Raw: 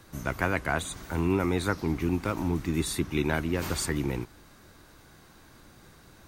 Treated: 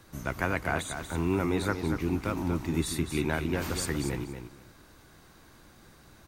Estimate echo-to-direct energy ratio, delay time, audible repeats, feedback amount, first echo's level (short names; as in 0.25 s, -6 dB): -8.0 dB, 0.236 s, 2, 18%, -8.0 dB